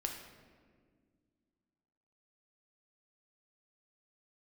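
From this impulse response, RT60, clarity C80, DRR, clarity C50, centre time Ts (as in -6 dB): 1.8 s, 7.0 dB, 2.0 dB, 5.5 dB, 39 ms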